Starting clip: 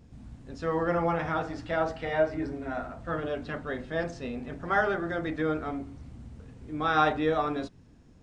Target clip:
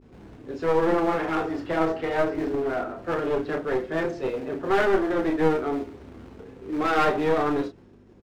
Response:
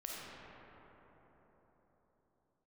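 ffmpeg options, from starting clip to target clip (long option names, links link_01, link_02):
-filter_complex "[0:a]agate=range=-33dB:threshold=-52dB:ratio=3:detection=peak,adynamicequalizer=threshold=0.0126:dfrequency=610:dqfactor=1.7:tfrequency=610:tqfactor=1.7:attack=5:release=100:ratio=0.375:range=2:mode=cutabove:tftype=bell,acrossover=split=400|930[link_01][link_02][link_03];[link_01]acrusher=bits=3:mode=log:mix=0:aa=0.000001[link_04];[link_04][link_02][link_03]amix=inputs=3:normalize=0,flanger=delay=5:depth=7.4:regen=-38:speed=0.25:shape=triangular,aeval=exprs='val(0)+0.002*(sin(2*PI*50*n/s)+sin(2*PI*2*50*n/s)/2+sin(2*PI*3*50*n/s)/3+sin(2*PI*4*50*n/s)/4+sin(2*PI*5*50*n/s)/5)':channel_layout=same,asplit=2[link_05][link_06];[link_06]highpass=frequency=720:poles=1,volume=11dB,asoftclip=type=tanh:threshold=-14dB[link_07];[link_05][link_07]amix=inputs=2:normalize=0,lowpass=frequency=1800:poles=1,volume=-6dB,equalizer=frequency=380:width=1.7:gain=15,asplit=2[link_08][link_09];[link_09]adelay=31,volume=-6.5dB[link_10];[link_08][link_10]amix=inputs=2:normalize=0,aeval=exprs='clip(val(0),-1,0.0398)':channel_layout=same,volume=3dB"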